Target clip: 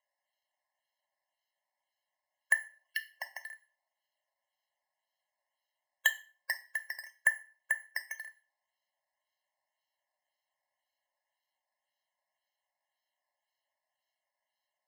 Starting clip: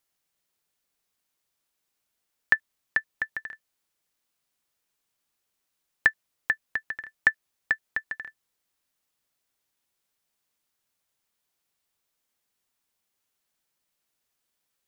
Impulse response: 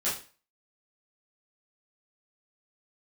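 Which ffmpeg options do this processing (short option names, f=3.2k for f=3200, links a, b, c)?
-filter_complex "[0:a]asettb=1/sr,asplit=3[a][b][c];[a]atrim=end=2.544[d];[b]atrim=start=2.54:end=3.43,asetpts=PTS-STARTPTS,afade=t=in:d=0.004:c=qsin,afade=t=out:st=0.886:d=0.004:c=qsin,highpass=f=2.9k:t=q:w=9.1[e];[c]atrim=start=3.426[f];[d][e]acrossfade=d=0.004:c1=hsin:c2=qsin[g];[g][f]acrossfade=d=0.004:c1=qsin:c2=hsin,acrusher=samples=9:mix=1:aa=0.000001:lfo=1:lforange=9:lforate=1.9,asplit=2[h][i];[1:a]atrim=start_sample=2205,lowshelf=f=400:g=-10.5[j];[i][j]afir=irnorm=-1:irlink=0,volume=-14dB[k];[h][k]amix=inputs=2:normalize=0,afftfilt=real='re*eq(mod(floor(b*sr/1024/550),2),1)':imag='im*eq(mod(floor(b*sr/1024/550),2),1)':win_size=1024:overlap=0.75,volume=-7dB"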